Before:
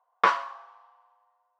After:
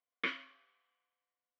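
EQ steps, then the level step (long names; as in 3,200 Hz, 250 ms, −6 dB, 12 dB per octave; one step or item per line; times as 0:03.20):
formant filter i
+6.0 dB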